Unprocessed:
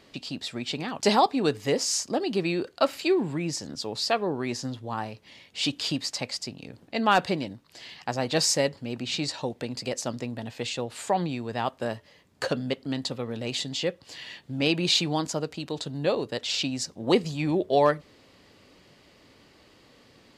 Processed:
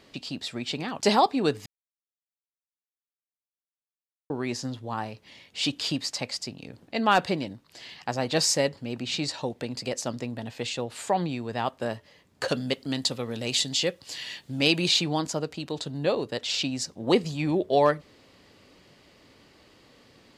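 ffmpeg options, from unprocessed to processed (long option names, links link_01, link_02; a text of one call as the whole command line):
ffmpeg -i in.wav -filter_complex "[0:a]asettb=1/sr,asplit=3[link_01][link_02][link_03];[link_01]atrim=end=12.484[link_04];[link_02]atrim=start=12.48:end=14.88,asetpts=PTS-STARTPTS,afade=type=in:duration=0.004:curve=qsin,afade=type=out:start_time=2.396:duration=0.004:curve=qsin,highshelf=frequency=3500:gain=10[link_05];[link_03]atrim=start=14.876[link_06];[link_04][link_05]acrossfade=duration=0.004:curve1=hsin:curve2=qsin[link_07];[link_07][link_06]acrossfade=duration=0.004:curve1=qsin:curve2=hsin,asplit=3[link_08][link_09][link_10];[link_08]atrim=end=1.66,asetpts=PTS-STARTPTS,afade=type=out:start_time=1.656:duration=0.004:curve=hsin[link_11];[link_09]atrim=start=1.66:end=4.3,asetpts=PTS-STARTPTS,volume=0[link_12];[link_10]atrim=start=4.3,asetpts=PTS-STARTPTS,afade=type=in:duration=0.004:curve=hsin[link_13];[link_11][link_12][link_13]concat=n=3:v=0:a=1" out.wav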